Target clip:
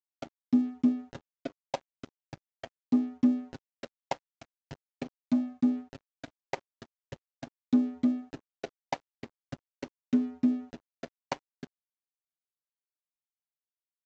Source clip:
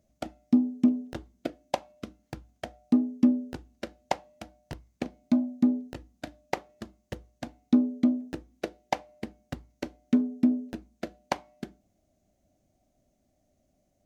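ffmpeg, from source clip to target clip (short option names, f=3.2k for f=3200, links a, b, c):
-af "aecho=1:1:7.4:0.71,aresample=16000,aeval=exprs='sgn(val(0))*max(abs(val(0))-0.00668,0)':c=same,aresample=44100,volume=-5.5dB"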